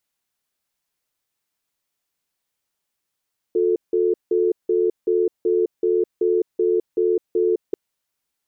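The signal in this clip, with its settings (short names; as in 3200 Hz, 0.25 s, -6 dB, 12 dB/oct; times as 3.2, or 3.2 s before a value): cadence 359 Hz, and 440 Hz, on 0.21 s, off 0.17 s, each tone -18.5 dBFS 4.19 s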